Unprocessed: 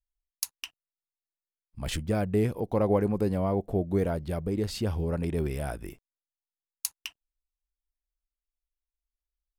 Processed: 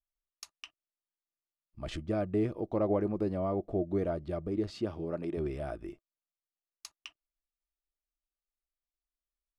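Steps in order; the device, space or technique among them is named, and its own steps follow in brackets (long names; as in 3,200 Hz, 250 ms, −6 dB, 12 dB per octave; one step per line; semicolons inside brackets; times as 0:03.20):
0:04.69–0:05.36: high-pass filter 99 Hz → 210 Hz 12 dB per octave
inside a cardboard box (low-pass filter 5,300 Hz 12 dB per octave; hollow resonant body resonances 340/620/1,200 Hz, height 11 dB, ringing for 45 ms)
level −8 dB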